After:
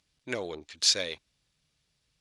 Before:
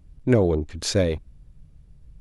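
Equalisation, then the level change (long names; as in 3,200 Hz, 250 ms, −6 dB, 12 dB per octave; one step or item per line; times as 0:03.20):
resonant band-pass 4,500 Hz, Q 1.1
+6.0 dB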